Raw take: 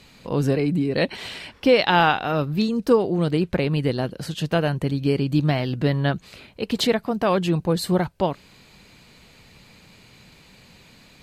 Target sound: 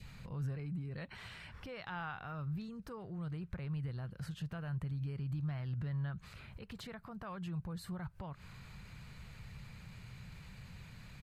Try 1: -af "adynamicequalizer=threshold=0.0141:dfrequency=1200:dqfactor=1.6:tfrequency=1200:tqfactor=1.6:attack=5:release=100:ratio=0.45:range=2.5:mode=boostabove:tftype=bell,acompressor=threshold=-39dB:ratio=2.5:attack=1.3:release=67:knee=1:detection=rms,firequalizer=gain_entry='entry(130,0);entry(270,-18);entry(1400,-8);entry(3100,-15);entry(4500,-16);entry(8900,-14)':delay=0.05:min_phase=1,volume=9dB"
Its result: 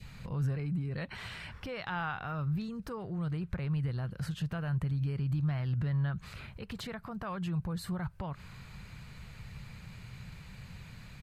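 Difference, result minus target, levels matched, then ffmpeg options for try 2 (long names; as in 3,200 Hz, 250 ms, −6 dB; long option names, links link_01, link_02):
downward compressor: peak gain reduction −7 dB
-af "adynamicequalizer=threshold=0.0141:dfrequency=1200:dqfactor=1.6:tfrequency=1200:tqfactor=1.6:attack=5:release=100:ratio=0.45:range=2.5:mode=boostabove:tftype=bell,acompressor=threshold=-50.5dB:ratio=2.5:attack=1.3:release=67:knee=1:detection=rms,firequalizer=gain_entry='entry(130,0);entry(270,-18);entry(1400,-8);entry(3100,-15);entry(4500,-16);entry(8900,-14)':delay=0.05:min_phase=1,volume=9dB"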